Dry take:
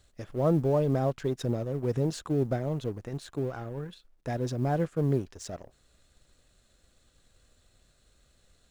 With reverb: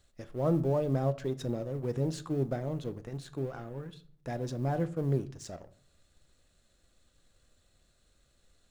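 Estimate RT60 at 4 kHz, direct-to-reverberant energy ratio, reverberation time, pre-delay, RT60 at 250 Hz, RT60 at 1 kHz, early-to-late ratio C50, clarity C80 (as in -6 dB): 0.35 s, 11.5 dB, 0.50 s, 3 ms, 0.70 s, 0.45 s, 18.5 dB, 22.0 dB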